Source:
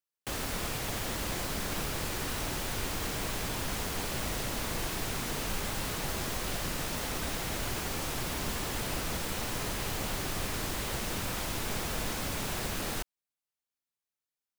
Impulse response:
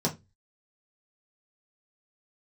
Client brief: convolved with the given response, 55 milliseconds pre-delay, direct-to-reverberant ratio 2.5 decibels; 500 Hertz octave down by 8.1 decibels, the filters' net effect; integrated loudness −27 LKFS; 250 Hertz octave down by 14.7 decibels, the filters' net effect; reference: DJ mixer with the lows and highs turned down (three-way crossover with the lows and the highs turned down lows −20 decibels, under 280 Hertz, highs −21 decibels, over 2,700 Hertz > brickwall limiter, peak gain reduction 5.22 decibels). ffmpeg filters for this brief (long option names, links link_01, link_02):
-filter_complex "[0:a]equalizer=frequency=250:width_type=o:gain=-8.5,equalizer=frequency=500:width_type=o:gain=-7,asplit=2[link_01][link_02];[1:a]atrim=start_sample=2205,adelay=55[link_03];[link_02][link_03]afir=irnorm=-1:irlink=0,volume=-11dB[link_04];[link_01][link_04]amix=inputs=2:normalize=0,acrossover=split=280 2700:gain=0.1 1 0.0891[link_05][link_06][link_07];[link_05][link_06][link_07]amix=inputs=3:normalize=0,volume=15dB,alimiter=limit=-18dB:level=0:latency=1"